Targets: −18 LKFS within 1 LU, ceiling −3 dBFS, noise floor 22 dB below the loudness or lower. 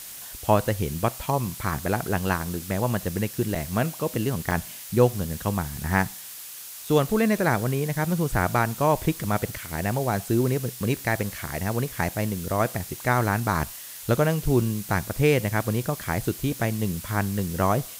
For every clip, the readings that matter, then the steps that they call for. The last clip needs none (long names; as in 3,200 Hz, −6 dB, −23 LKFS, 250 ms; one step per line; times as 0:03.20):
number of dropouts 2; longest dropout 4.7 ms; background noise floor −40 dBFS; target noise floor −48 dBFS; integrated loudness −25.5 LKFS; sample peak −6.0 dBFS; target loudness −18.0 LKFS
→ repair the gap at 0:03.55/0:04.51, 4.7 ms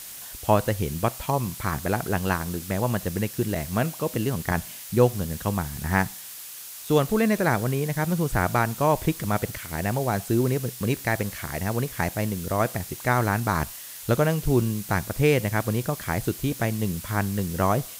number of dropouts 0; background noise floor −40 dBFS; target noise floor −48 dBFS
→ broadband denoise 8 dB, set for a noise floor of −40 dBFS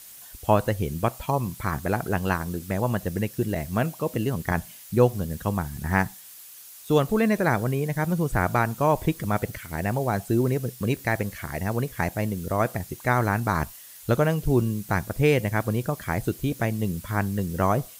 background noise floor −45 dBFS; target noise floor −48 dBFS
→ broadband denoise 6 dB, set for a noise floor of −45 dBFS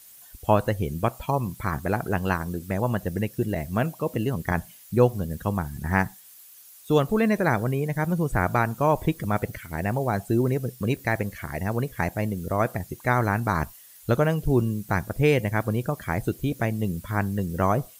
background noise floor −49 dBFS; integrated loudness −26.0 LKFS; sample peak −6.0 dBFS; target loudness −18.0 LKFS
→ level +8 dB
brickwall limiter −3 dBFS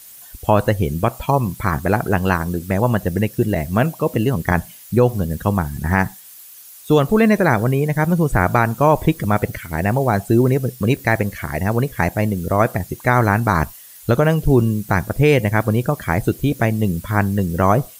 integrated loudness −18.5 LKFS; sample peak −3.0 dBFS; background noise floor −41 dBFS